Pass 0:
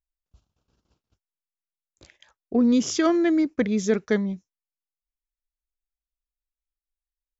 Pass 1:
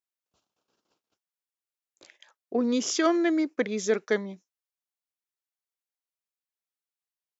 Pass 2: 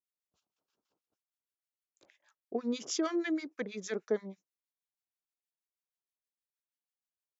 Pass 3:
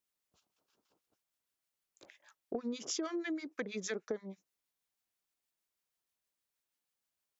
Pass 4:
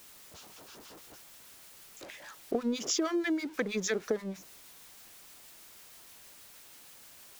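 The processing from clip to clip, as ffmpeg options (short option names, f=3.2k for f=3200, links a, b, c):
-af "highpass=360"
-filter_complex "[0:a]acrossover=split=1100[a][b];[a]aeval=exprs='val(0)*(1-1/2+1/2*cos(2*PI*6.3*n/s))':c=same[c];[b]aeval=exprs='val(0)*(1-1/2-1/2*cos(2*PI*6.3*n/s))':c=same[d];[c][d]amix=inputs=2:normalize=0,volume=-4dB"
-af "acompressor=threshold=-42dB:ratio=6,volume=6.5dB"
-af "aeval=exprs='val(0)+0.5*0.00266*sgn(val(0))':c=same,volume=6.5dB"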